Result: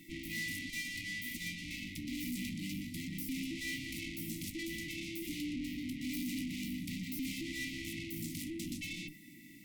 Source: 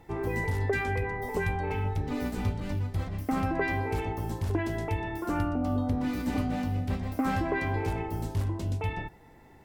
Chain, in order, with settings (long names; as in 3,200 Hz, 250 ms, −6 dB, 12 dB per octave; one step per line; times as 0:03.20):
high-pass filter 180 Hz 24 dB per octave
high-shelf EQ 6,900 Hz +8 dB
mains-hum notches 50/100/150/200/250/300 Hz
tube saturation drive 44 dB, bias 0.55
linear-phase brick-wall band-stop 340–1,900 Hz
level +8.5 dB